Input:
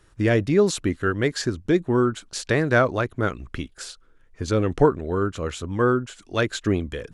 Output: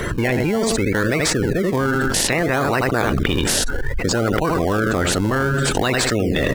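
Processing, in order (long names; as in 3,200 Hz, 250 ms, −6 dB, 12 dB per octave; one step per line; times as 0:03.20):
ceiling on every frequency bin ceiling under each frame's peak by 14 dB
on a send: repeating echo 86 ms, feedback 24%, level −11.5 dB
on the sum: gate on every frequency bin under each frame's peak −15 dB strong
speed change +9%
in parallel at −7 dB: sample-and-hold swept by an LFO 25×, swing 100% 0.62 Hz
on the sum: envelope flattener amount 100%
level −8.5 dB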